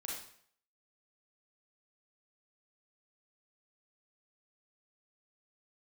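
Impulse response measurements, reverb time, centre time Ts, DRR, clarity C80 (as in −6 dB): 0.60 s, 52 ms, −4.0 dB, 5.5 dB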